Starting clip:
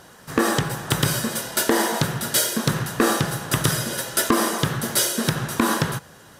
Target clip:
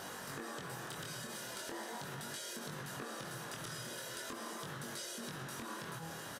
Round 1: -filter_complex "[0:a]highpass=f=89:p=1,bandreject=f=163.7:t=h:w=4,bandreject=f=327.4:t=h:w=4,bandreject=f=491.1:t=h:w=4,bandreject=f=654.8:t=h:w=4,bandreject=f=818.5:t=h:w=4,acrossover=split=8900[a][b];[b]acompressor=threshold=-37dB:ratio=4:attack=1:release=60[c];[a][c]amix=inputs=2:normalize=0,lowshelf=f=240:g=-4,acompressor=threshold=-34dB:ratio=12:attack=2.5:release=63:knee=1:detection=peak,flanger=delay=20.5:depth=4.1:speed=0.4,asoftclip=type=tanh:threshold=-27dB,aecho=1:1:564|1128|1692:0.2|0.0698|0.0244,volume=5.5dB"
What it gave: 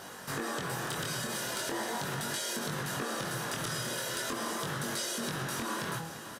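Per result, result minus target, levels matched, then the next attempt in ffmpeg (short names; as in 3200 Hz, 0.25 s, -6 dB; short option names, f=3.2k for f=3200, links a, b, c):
compressor: peak gain reduction -9.5 dB; echo-to-direct +10.5 dB
-filter_complex "[0:a]highpass=f=89:p=1,bandreject=f=163.7:t=h:w=4,bandreject=f=327.4:t=h:w=4,bandreject=f=491.1:t=h:w=4,bandreject=f=654.8:t=h:w=4,bandreject=f=818.5:t=h:w=4,acrossover=split=8900[a][b];[b]acompressor=threshold=-37dB:ratio=4:attack=1:release=60[c];[a][c]amix=inputs=2:normalize=0,lowshelf=f=240:g=-4,acompressor=threshold=-44.5dB:ratio=12:attack=2.5:release=63:knee=1:detection=peak,flanger=delay=20.5:depth=4.1:speed=0.4,asoftclip=type=tanh:threshold=-27dB,aecho=1:1:564|1128|1692:0.2|0.0698|0.0244,volume=5.5dB"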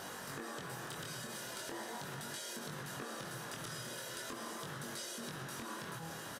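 echo-to-direct +10.5 dB
-filter_complex "[0:a]highpass=f=89:p=1,bandreject=f=163.7:t=h:w=4,bandreject=f=327.4:t=h:w=4,bandreject=f=491.1:t=h:w=4,bandreject=f=654.8:t=h:w=4,bandreject=f=818.5:t=h:w=4,acrossover=split=8900[a][b];[b]acompressor=threshold=-37dB:ratio=4:attack=1:release=60[c];[a][c]amix=inputs=2:normalize=0,lowshelf=f=240:g=-4,acompressor=threshold=-44.5dB:ratio=12:attack=2.5:release=63:knee=1:detection=peak,flanger=delay=20.5:depth=4.1:speed=0.4,asoftclip=type=tanh:threshold=-27dB,aecho=1:1:564|1128:0.0596|0.0208,volume=5.5dB"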